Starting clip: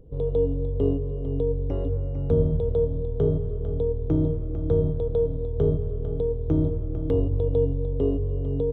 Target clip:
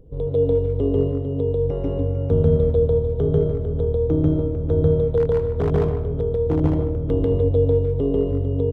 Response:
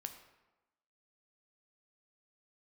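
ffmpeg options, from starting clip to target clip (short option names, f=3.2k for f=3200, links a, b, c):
-filter_complex "[0:a]asettb=1/sr,asplit=3[a][b][c];[a]atrim=end=5.174[d];[b]atrim=start=5.17:end=6.6,asetpts=PTS-STARTPTS,afade=t=in:d=0.004:c=qsin,afade=t=out:st=1.426:d=0.004:c=qsin,aeval=exprs='0.168*(abs(mod(val(0)/0.168+3,4)-2)-1)':c=same[e];[c]atrim=start=6.596[f];[d][e]acrossfade=d=0.004:c1=hsin:c2=qsin[g];[g][f]acrossfade=d=0.004:c1=qsin:c2=hsin,asplit=2[h][i];[i]adelay=150,highpass=300,lowpass=3.4k,asoftclip=type=hard:threshold=-18.5dB,volume=-11dB[j];[h][j]amix=inputs=2:normalize=0,asplit=2[k][l];[1:a]atrim=start_sample=2205,adelay=142[m];[l][m]afir=irnorm=-1:irlink=0,volume=4.5dB[n];[k][n]amix=inputs=2:normalize=0,volume=1.5dB"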